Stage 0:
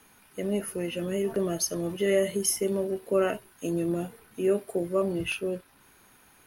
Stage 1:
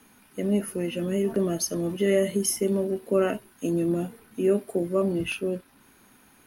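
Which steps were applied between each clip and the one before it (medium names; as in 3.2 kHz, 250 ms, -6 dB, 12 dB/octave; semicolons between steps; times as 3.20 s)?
peaking EQ 240 Hz +8.5 dB 0.79 oct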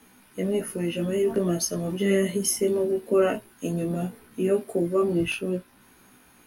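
chorus 0.5 Hz, delay 16 ms, depth 2.1 ms; trim +4.5 dB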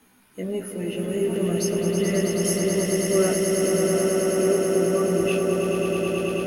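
echo with a slow build-up 108 ms, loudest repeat 8, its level -5.5 dB; trim -3 dB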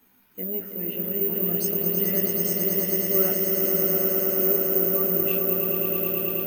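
careless resampling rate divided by 3×, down filtered, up zero stuff; trim -6 dB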